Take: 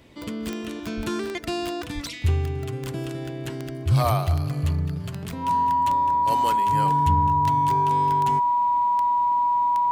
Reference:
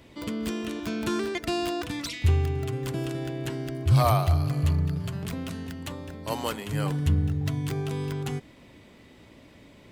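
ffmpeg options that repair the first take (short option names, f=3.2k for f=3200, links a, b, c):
-filter_complex "[0:a]adeclick=t=4,bandreject=f=970:w=30,asplit=3[a][b][c];[a]afade=t=out:st=0.96:d=0.02[d];[b]highpass=f=140:w=0.5412,highpass=f=140:w=1.3066,afade=t=in:st=0.96:d=0.02,afade=t=out:st=1.08:d=0.02[e];[c]afade=t=in:st=1.08:d=0.02[f];[d][e][f]amix=inputs=3:normalize=0,asplit=3[g][h][i];[g]afade=t=out:st=1.94:d=0.02[j];[h]highpass=f=140:w=0.5412,highpass=f=140:w=1.3066,afade=t=in:st=1.94:d=0.02,afade=t=out:st=2.06:d=0.02[k];[i]afade=t=in:st=2.06:d=0.02[l];[j][k][l]amix=inputs=3:normalize=0"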